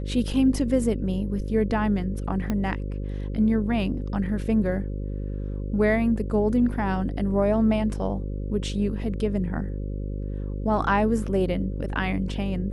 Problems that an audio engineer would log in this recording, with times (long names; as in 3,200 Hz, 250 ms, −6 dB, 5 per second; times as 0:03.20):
mains buzz 50 Hz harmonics 11 −30 dBFS
0:02.50: click −14 dBFS